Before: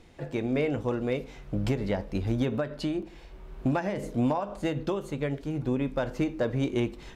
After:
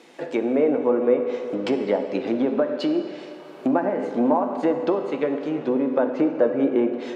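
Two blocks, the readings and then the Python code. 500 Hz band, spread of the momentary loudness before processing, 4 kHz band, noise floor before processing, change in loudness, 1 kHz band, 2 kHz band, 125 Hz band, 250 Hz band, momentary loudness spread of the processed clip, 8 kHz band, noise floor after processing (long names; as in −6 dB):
+10.0 dB, 5 LU, +2.5 dB, −48 dBFS, +7.0 dB, +8.0 dB, +2.5 dB, −10.5 dB, +6.5 dB, 7 LU, can't be measured, −41 dBFS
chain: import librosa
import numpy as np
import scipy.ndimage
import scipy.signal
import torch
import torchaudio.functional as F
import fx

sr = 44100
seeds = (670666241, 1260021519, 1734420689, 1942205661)

y = scipy.signal.sosfilt(scipy.signal.butter(4, 260.0, 'highpass', fs=sr, output='sos'), x)
y = fx.env_lowpass_down(y, sr, base_hz=1100.0, full_db=-27.0)
y = fx.rev_fdn(y, sr, rt60_s=3.1, lf_ratio=0.7, hf_ratio=0.7, size_ms=36.0, drr_db=5.5)
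y = y * librosa.db_to_amplitude(8.5)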